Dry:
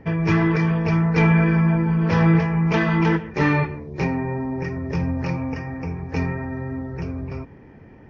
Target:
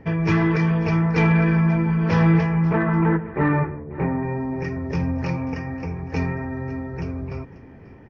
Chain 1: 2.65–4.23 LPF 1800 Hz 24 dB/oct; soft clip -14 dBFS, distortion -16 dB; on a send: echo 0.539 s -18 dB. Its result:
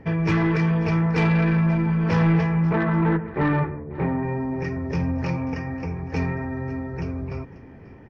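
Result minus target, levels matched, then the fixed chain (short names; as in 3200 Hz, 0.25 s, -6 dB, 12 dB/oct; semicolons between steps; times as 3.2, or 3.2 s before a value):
soft clip: distortion +11 dB
2.65–4.23 LPF 1800 Hz 24 dB/oct; soft clip -6.5 dBFS, distortion -28 dB; on a send: echo 0.539 s -18 dB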